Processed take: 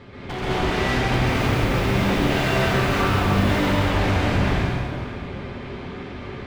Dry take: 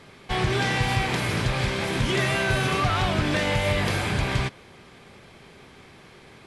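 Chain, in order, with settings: low-pass 3.7 kHz 12 dB/octave; bass shelf 420 Hz +8 dB; compression 6:1, threshold -25 dBFS, peak gain reduction 12.5 dB; comb of notches 160 Hz; wavefolder -27.5 dBFS; 1.13–3.58 s: companded quantiser 6-bit; plate-style reverb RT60 2.4 s, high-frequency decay 0.75×, pre-delay 115 ms, DRR -9.5 dB; trim +2.5 dB

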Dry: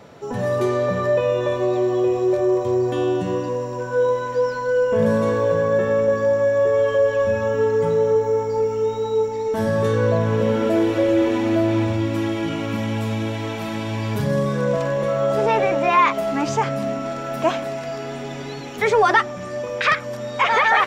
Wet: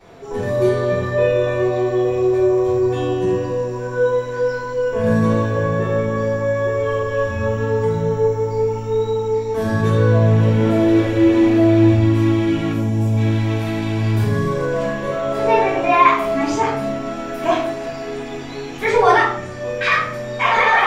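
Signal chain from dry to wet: 12.72–13.17 s: high-order bell 2.2 kHz -11 dB 2.3 oct; reverberation RT60 0.55 s, pre-delay 3 ms, DRR -13 dB; trim -11 dB

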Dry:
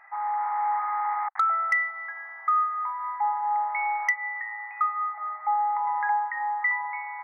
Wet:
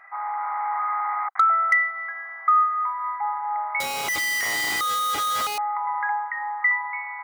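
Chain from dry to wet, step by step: 3.80–5.58 s: one-bit comparator; comb of notches 880 Hz; trim +5 dB

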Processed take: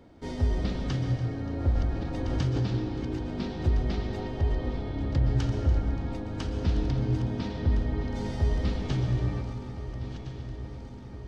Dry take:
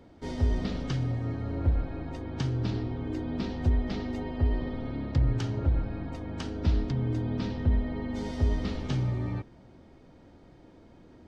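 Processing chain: backward echo that repeats 681 ms, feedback 76%, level -12 dB; thinning echo 288 ms, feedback 65%, level -16 dB; reverberation RT60 1.4 s, pre-delay 113 ms, DRR 6.5 dB; 1.69–2.66 s: swell ahead of each attack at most 24 dB/s

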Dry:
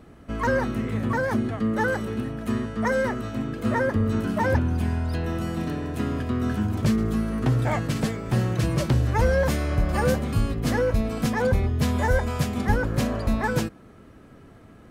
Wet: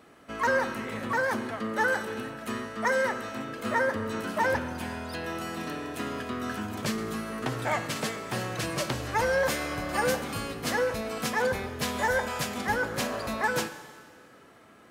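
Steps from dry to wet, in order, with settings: high-pass 810 Hz 6 dB/octave; Schroeder reverb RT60 1.8 s, combs from 30 ms, DRR 11.5 dB; trim +2 dB

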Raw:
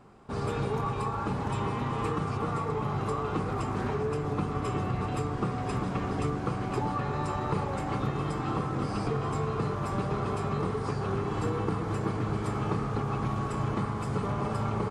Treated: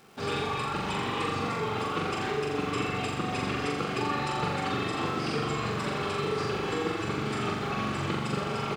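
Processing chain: frequency weighting D; reverb removal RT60 0.52 s; treble shelf 8.7 kHz -5.5 dB; band-stop 1 kHz, Q 16; crackle 400 per s -48 dBFS; tempo 1.7×; on a send: flutter echo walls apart 7.2 m, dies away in 0.95 s

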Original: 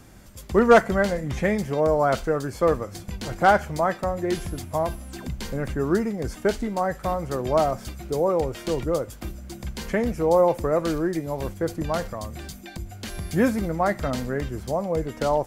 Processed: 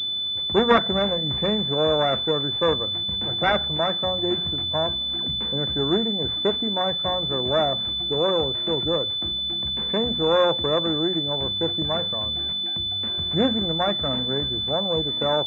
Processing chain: self-modulated delay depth 0.44 ms; high-pass 72 Hz 24 dB/octave; hum notches 60/120/180/240 Hz; class-D stage that switches slowly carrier 3.5 kHz

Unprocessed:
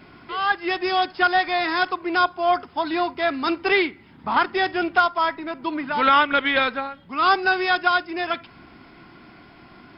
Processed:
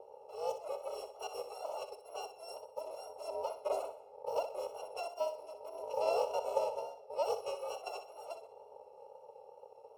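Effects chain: bit-reversed sample order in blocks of 128 samples; elliptic band-pass 400–910 Hz, stop band 40 dB; flutter echo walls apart 10.6 m, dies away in 0.37 s; on a send at -21.5 dB: reverberation RT60 1.9 s, pre-delay 144 ms; on the sum: wow and flutter 24 cents; trim +12 dB

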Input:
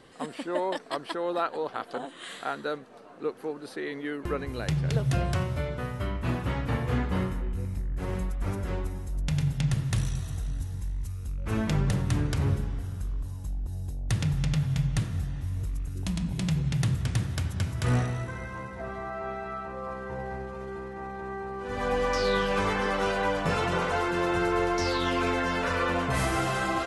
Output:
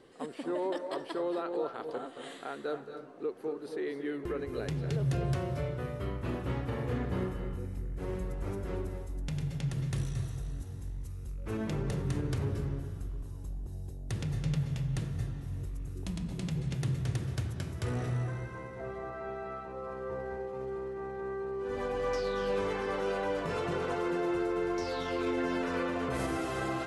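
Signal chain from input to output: peaking EQ 390 Hz +8.5 dB 0.99 oct; peak limiter -17.5 dBFS, peak gain reduction 7 dB; on a send: reverberation RT60 0.40 s, pre-delay 218 ms, DRR 7 dB; on the sum: trim -8 dB

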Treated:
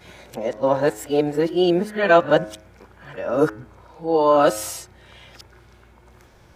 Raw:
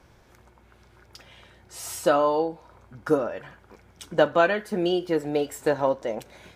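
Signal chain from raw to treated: reverse the whole clip; harmonic-percussive split percussive -4 dB; de-hum 106.4 Hz, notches 25; trim +6.5 dB

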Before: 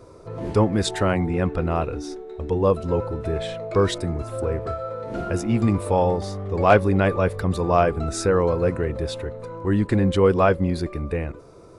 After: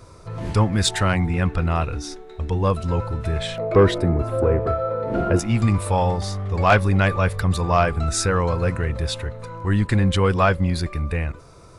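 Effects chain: peaking EQ 410 Hz -12.5 dB 2 oct, from 3.58 s 7.4 kHz, from 5.39 s 380 Hz; saturation -12.5 dBFS, distortion -22 dB; trim +7 dB

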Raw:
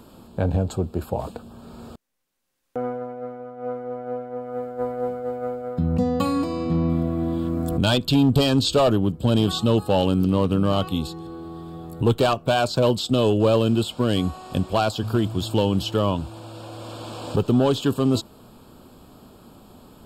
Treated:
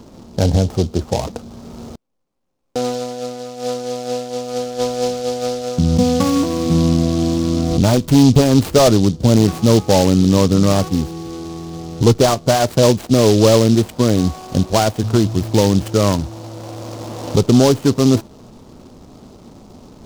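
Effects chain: median filter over 25 samples; delay time shaken by noise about 4.5 kHz, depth 0.066 ms; trim +7.5 dB

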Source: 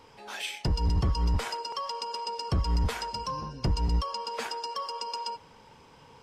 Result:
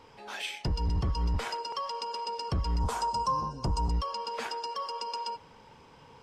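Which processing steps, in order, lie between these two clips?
treble shelf 6.5 kHz -6.5 dB; peak limiter -24 dBFS, peak gain reduction 4 dB; 2.80–3.91 s: graphic EQ 1/2/4/8 kHz +9/-11/-3/+9 dB

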